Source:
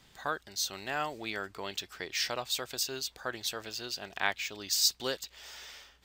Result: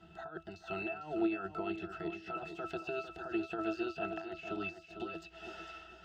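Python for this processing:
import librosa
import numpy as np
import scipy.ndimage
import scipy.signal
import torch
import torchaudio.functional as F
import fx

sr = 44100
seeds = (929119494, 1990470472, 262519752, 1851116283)

p1 = fx.peak_eq(x, sr, hz=69.0, db=-11.0, octaves=2.8)
p2 = fx.over_compress(p1, sr, threshold_db=-42.0, ratio=-1.0)
p3 = fx.octave_resonator(p2, sr, note='E', decay_s=0.15)
p4 = p3 + fx.echo_feedback(p3, sr, ms=452, feedback_pct=29, wet_db=-9, dry=0)
y = F.gain(torch.from_numpy(p4), 15.5).numpy()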